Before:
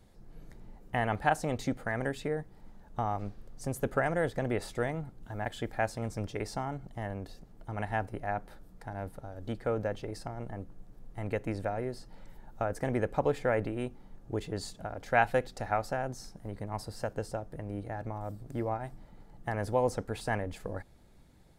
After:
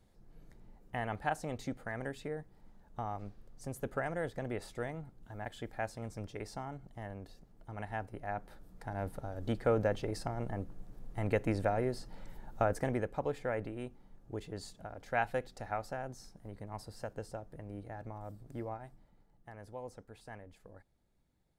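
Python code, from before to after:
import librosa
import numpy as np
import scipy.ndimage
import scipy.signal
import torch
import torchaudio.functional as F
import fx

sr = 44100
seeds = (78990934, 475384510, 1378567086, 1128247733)

y = fx.gain(x, sr, db=fx.line((8.08, -7.0), (9.16, 2.0), (12.68, 2.0), (13.12, -7.0), (18.58, -7.0), (19.49, -17.0)))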